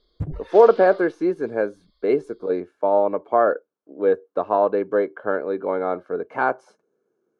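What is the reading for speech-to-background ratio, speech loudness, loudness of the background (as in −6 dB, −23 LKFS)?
15.5 dB, −21.5 LKFS, −37.0 LKFS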